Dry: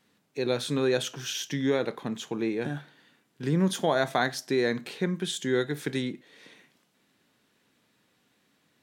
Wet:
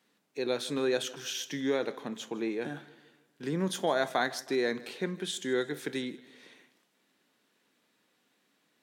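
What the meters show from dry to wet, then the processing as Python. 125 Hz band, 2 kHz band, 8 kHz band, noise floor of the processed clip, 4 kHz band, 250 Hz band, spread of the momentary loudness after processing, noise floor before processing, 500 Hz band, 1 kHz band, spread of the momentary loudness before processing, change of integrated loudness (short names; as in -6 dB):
-9.5 dB, -3.0 dB, -3.0 dB, -73 dBFS, -3.0 dB, -5.0 dB, 11 LU, -70 dBFS, -3.0 dB, -3.0 dB, 10 LU, -4.0 dB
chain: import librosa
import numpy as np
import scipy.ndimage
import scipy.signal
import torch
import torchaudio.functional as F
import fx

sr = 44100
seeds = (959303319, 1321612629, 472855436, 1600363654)

p1 = scipy.signal.sosfilt(scipy.signal.butter(2, 220.0, 'highpass', fs=sr, output='sos'), x)
p2 = p1 + fx.echo_feedback(p1, sr, ms=158, feedback_pct=49, wet_db=-20, dry=0)
y = p2 * 10.0 ** (-3.0 / 20.0)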